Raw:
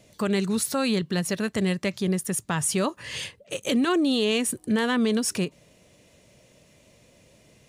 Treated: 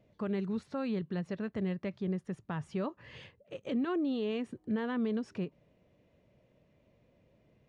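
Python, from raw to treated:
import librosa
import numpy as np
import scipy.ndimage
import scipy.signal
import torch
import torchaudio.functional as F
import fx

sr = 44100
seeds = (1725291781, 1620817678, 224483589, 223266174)

y = fx.spacing_loss(x, sr, db_at_10k=37)
y = F.gain(torch.from_numpy(y), -8.0).numpy()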